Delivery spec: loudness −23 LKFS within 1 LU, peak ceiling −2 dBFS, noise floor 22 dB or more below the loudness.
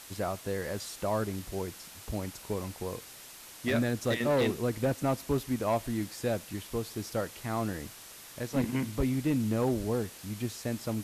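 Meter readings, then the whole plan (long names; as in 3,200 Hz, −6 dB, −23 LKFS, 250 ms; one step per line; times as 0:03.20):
share of clipped samples 0.9%; peaks flattened at −21.5 dBFS; background noise floor −49 dBFS; target noise floor −55 dBFS; integrated loudness −32.5 LKFS; sample peak −21.5 dBFS; target loudness −23.0 LKFS
→ clipped peaks rebuilt −21.5 dBFS
noise reduction from a noise print 6 dB
level +9.5 dB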